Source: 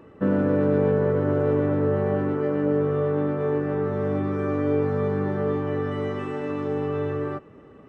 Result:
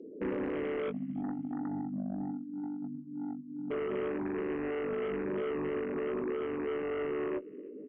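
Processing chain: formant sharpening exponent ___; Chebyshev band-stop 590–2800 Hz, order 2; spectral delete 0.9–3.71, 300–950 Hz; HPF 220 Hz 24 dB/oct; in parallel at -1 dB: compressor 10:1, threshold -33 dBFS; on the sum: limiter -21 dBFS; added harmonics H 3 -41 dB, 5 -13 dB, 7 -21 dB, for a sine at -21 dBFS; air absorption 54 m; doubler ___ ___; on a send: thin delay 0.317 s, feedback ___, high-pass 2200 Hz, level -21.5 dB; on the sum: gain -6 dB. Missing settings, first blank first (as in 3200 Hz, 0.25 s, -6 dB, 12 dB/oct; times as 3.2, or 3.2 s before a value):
3, 19 ms, -8 dB, 34%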